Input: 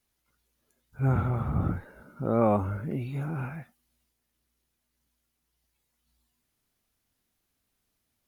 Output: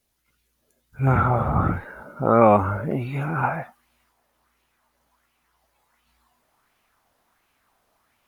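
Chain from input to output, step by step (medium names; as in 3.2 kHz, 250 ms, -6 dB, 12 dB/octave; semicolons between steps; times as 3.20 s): peaking EQ 1 kHz -3.5 dB 2 oct, from 1.07 s +7 dB, from 3.43 s +14 dB; sweeping bell 1.4 Hz 550–2700 Hz +8 dB; trim +4.5 dB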